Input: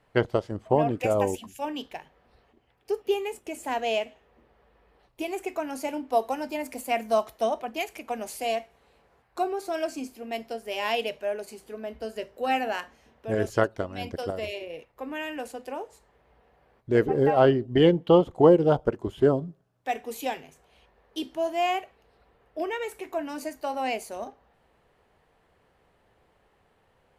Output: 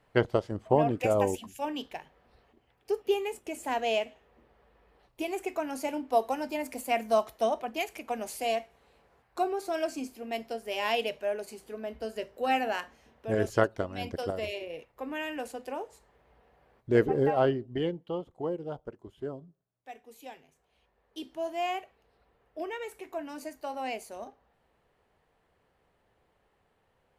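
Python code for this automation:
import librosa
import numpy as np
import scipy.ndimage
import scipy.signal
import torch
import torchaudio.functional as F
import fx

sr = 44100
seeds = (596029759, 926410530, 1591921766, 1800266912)

y = fx.gain(x, sr, db=fx.line((17.04, -1.5), (17.69, -9.0), (18.07, -16.5), (20.1, -16.5), (21.46, -6.0)))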